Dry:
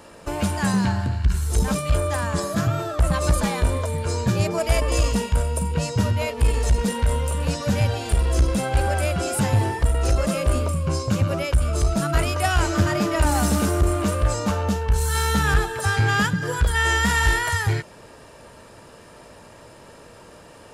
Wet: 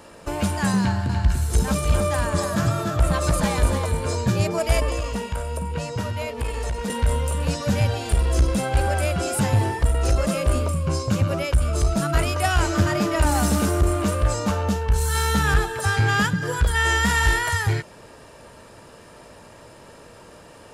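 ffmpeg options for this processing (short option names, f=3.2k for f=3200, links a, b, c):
-filter_complex "[0:a]asettb=1/sr,asplit=3[a][b][c];[a]atrim=end=0.804[d];[b]atrim=start=0.8:end=4.15,asetpts=PTS-STARTPTS,afade=t=in:d=0.004:c=qsin,afade=t=out:st=3.346:d=0.004:c=qsin,aecho=1:1:292:0.501,atrim=end_sample=147735[e];[c]atrim=start=4.146[f];[d][e]acrossfade=d=0.004:c1=hsin:c2=qsin[g];[g][f]acrossfade=d=0.004:c1=qsin:c2=hsin,asettb=1/sr,asplit=3[h][i][j];[h]atrim=end=4.894[k];[i]atrim=start=4.89:end=6.9,asetpts=PTS-STARTPTS,afade=t=in:d=0.004:c=qsin,afade=t=out:st=2.006:d=0.004:c=qsin,acrossover=split=440|2900[l][m][n];[l]acompressor=threshold=-26dB:ratio=4[o];[m]acompressor=threshold=-29dB:ratio=4[p];[n]acompressor=threshold=-41dB:ratio=4[q];[o][p][q]amix=inputs=3:normalize=0[r];[j]atrim=start=6.896[s];[k][r]acrossfade=d=0.004:c1=hsin:c2=qsin[t];[t][s]acrossfade=d=0.004:c1=qsin:c2=hsin"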